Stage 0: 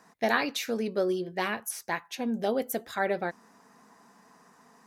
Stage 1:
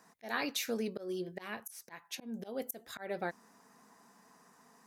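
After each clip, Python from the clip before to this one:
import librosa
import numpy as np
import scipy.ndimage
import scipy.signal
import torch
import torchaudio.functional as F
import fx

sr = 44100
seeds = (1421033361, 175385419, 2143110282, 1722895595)

y = fx.high_shelf(x, sr, hz=7100.0, db=7.5)
y = fx.auto_swell(y, sr, attack_ms=237.0)
y = y * 10.0 ** (-5.0 / 20.0)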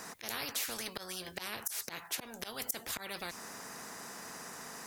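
y = fx.spectral_comp(x, sr, ratio=4.0)
y = y * 10.0 ** (5.5 / 20.0)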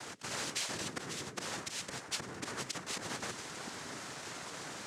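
y = fx.octave_divider(x, sr, octaves=1, level_db=1.0)
y = fx.echo_stepped(y, sr, ms=705, hz=240.0, octaves=1.4, feedback_pct=70, wet_db=-4.5)
y = fx.noise_vocoder(y, sr, seeds[0], bands=3)
y = y * 10.0 ** (1.5 / 20.0)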